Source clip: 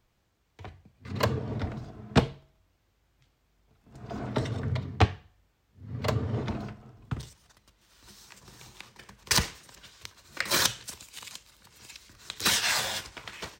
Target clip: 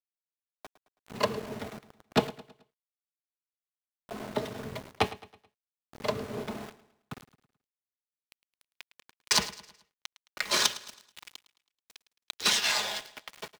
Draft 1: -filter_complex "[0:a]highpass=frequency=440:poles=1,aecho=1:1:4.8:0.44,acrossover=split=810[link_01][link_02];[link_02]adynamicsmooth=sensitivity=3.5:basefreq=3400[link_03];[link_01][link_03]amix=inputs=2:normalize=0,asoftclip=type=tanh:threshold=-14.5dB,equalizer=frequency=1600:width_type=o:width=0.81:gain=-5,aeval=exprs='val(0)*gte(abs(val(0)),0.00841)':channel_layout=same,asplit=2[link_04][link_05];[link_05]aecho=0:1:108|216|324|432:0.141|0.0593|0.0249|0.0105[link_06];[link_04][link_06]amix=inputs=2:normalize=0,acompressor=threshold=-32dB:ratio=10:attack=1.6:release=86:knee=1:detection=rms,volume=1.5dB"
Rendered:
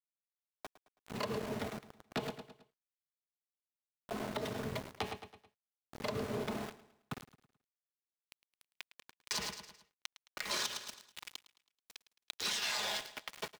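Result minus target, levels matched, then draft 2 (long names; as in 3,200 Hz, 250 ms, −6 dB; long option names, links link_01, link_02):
downward compressor: peak gain reduction +14 dB; soft clipping: distortion +12 dB
-filter_complex "[0:a]highpass=frequency=440:poles=1,aecho=1:1:4.8:0.44,acrossover=split=810[link_01][link_02];[link_02]adynamicsmooth=sensitivity=3.5:basefreq=3400[link_03];[link_01][link_03]amix=inputs=2:normalize=0,asoftclip=type=tanh:threshold=-6.5dB,equalizer=frequency=1600:width_type=o:width=0.81:gain=-5,aeval=exprs='val(0)*gte(abs(val(0)),0.00841)':channel_layout=same,asplit=2[link_04][link_05];[link_05]aecho=0:1:108|216|324|432:0.141|0.0593|0.0249|0.0105[link_06];[link_04][link_06]amix=inputs=2:normalize=0,volume=1.5dB"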